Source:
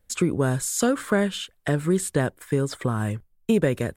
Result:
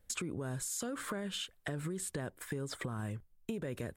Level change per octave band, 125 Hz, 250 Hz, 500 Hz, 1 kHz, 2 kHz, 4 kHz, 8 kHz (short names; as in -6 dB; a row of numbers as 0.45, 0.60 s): -15.0, -16.5, -17.5, -14.5, -13.0, -8.0, -10.0 dB